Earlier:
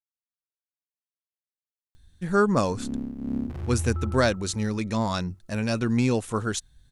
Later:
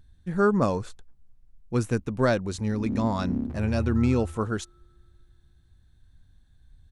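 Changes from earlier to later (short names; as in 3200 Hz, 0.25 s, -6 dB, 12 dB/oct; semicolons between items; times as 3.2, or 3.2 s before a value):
speech: entry -1.95 s; master: add high shelf 2400 Hz -10 dB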